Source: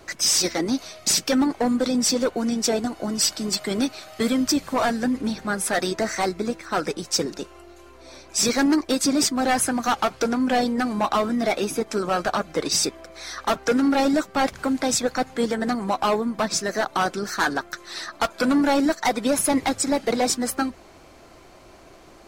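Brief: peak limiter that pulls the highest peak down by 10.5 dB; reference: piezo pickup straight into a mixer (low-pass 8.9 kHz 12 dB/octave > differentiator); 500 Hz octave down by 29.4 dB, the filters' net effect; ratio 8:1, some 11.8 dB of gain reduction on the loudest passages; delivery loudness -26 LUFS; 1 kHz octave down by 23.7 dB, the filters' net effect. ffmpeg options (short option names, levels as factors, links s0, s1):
-af "equalizer=f=500:t=o:g=-6.5,equalizer=f=1000:t=o:g=-6.5,acompressor=threshold=0.0282:ratio=8,alimiter=level_in=1.58:limit=0.0631:level=0:latency=1,volume=0.631,lowpass=8900,aderivative,volume=7.94"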